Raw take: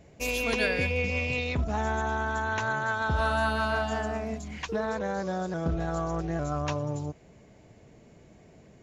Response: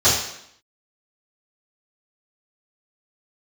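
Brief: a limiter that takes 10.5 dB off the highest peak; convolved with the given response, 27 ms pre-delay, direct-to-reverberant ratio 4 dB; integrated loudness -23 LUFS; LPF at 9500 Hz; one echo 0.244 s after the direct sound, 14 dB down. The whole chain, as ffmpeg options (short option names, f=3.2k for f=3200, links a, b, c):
-filter_complex "[0:a]lowpass=9.5k,alimiter=level_in=0.5dB:limit=-24dB:level=0:latency=1,volume=-0.5dB,aecho=1:1:244:0.2,asplit=2[a][b];[1:a]atrim=start_sample=2205,adelay=27[c];[b][c]afir=irnorm=-1:irlink=0,volume=-25dB[d];[a][d]amix=inputs=2:normalize=0,volume=7.5dB"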